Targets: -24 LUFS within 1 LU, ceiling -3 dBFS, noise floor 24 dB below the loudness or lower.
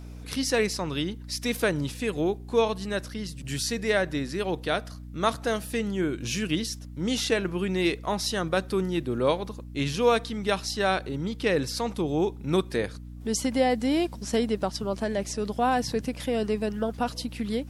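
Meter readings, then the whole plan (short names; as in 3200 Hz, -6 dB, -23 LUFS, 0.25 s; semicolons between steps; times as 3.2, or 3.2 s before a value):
hum 60 Hz; harmonics up to 300 Hz; hum level -38 dBFS; loudness -28.0 LUFS; peak -9.5 dBFS; loudness target -24.0 LUFS
-> notches 60/120/180/240/300 Hz; gain +4 dB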